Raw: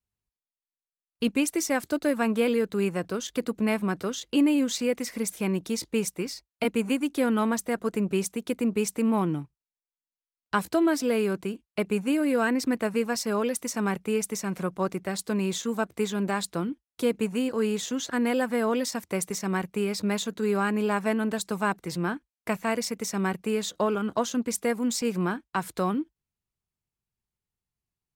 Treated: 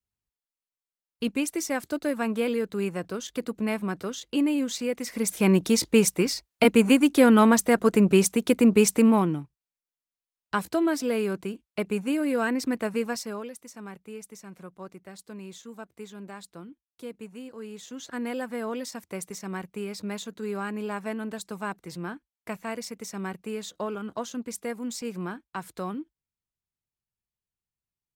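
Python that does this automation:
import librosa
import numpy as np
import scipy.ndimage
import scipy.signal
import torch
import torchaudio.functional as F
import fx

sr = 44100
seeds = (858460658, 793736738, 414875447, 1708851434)

y = fx.gain(x, sr, db=fx.line((4.97, -2.5), (5.5, 7.5), (8.98, 7.5), (9.41, -1.5), (13.09, -1.5), (13.57, -14.0), (17.68, -14.0), (18.16, -6.5)))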